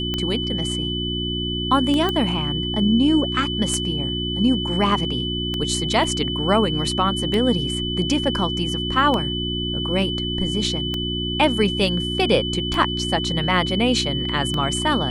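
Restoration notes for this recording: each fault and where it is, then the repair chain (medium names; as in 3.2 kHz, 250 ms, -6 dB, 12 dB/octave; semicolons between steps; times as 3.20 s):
hum 60 Hz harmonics 6 -27 dBFS
tick 33 1/3 rpm -11 dBFS
whine 3 kHz -26 dBFS
2.09 s: pop -10 dBFS
6.04 s: dropout 2.4 ms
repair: de-click; de-hum 60 Hz, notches 6; band-stop 3 kHz, Q 30; interpolate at 6.04 s, 2.4 ms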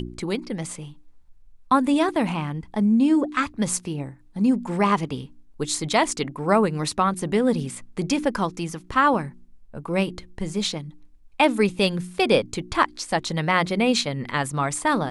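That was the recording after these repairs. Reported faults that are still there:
nothing left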